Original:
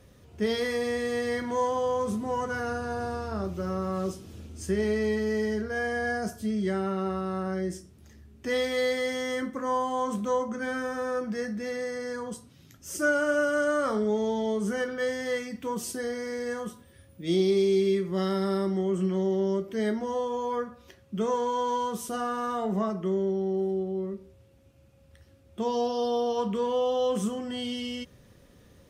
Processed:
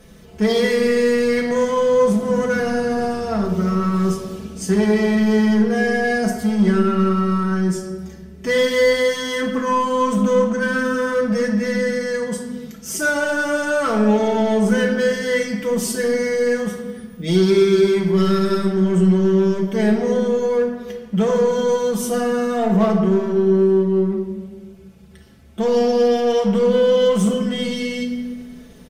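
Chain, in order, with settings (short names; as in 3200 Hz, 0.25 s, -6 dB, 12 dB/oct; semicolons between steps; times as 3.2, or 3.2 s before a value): comb 4.6 ms, depth 79%; in parallel at -9.5 dB: wavefolder -27.5 dBFS; on the sum: reverb RT60 1.7 s, pre-delay 6 ms, DRR 2.5 dB; gain +5 dB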